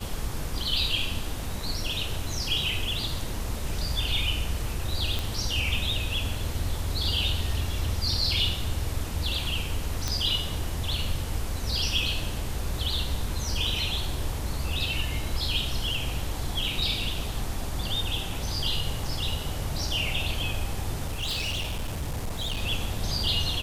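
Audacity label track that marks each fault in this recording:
5.190000	5.190000	pop
10.080000	10.080000	pop
21.060000	22.630000	clipped -26.5 dBFS

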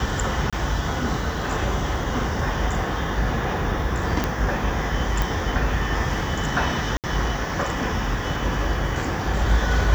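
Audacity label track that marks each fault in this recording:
0.500000	0.530000	gap 26 ms
4.240000	4.240000	pop -8 dBFS
5.220000	5.220000	pop
6.970000	7.040000	gap 68 ms

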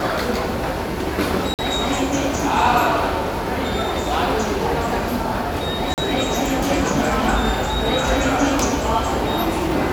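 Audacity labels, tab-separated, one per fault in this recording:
1.540000	1.590000	gap 48 ms
5.940000	5.980000	gap 38 ms

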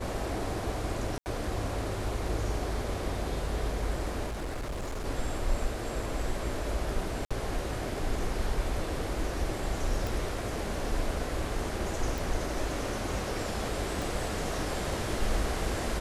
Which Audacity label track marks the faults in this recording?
1.180000	1.260000	gap 79 ms
4.260000	5.060000	clipped -31.5 dBFS
7.250000	7.310000	gap 56 ms
10.070000	10.070000	pop
12.180000	12.180000	pop
14.020000	14.020000	pop

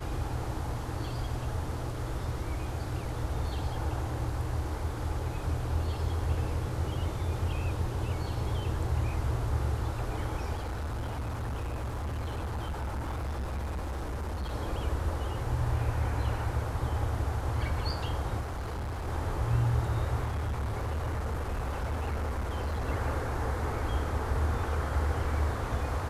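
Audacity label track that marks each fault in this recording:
10.540000	14.530000	clipped -31 dBFS
18.400000	19.080000	clipped -32 dBFS
20.240000	22.890000	clipped -28.5 dBFS

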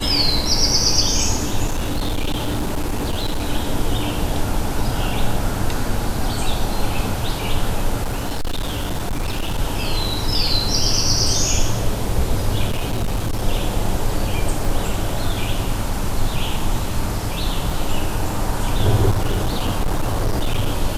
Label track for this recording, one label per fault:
1.660000	3.450000	clipped -17 dBFS
8.030000	9.590000	clipped -18 dBFS
12.670000	13.460000	clipped -16.5 dBFS
14.650000	14.650000	gap 2.1 ms
17.700000	17.700000	gap 3.9 ms
19.100000	20.680000	clipped -14.5 dBFS

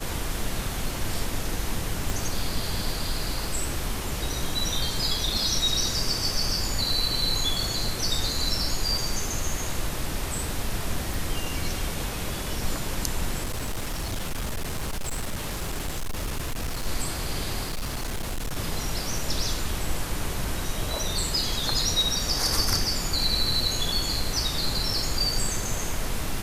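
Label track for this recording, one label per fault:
2.100000	2.100000	pop
11.140000	11.140000	pop
13.430000	16.870000	clipped -25.5 dBFS
17.630000	18.570000	clipped -26 dBFS

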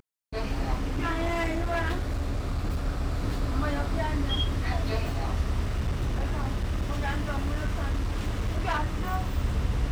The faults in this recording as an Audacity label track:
0.780000	2.870000	clipped -23.5 dBFS
5.640000	9.130000	clipped -23 dBFS

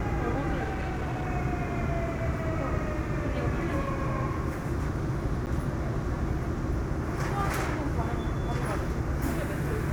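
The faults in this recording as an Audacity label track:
0.640000	1.260000	clipped -27.5 dBFS
5.460000	5.470000	gap 9.3 ms

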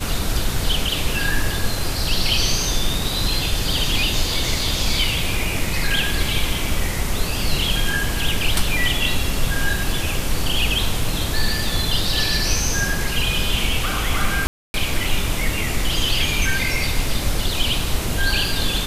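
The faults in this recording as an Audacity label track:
14.470000	14.740000	gap 0.271 s

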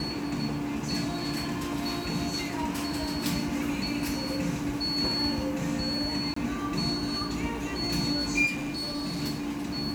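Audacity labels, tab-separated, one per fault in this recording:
6.340000	6.360000	gap 24 ms
8.460000	9.230000	clipped -29 dBFS

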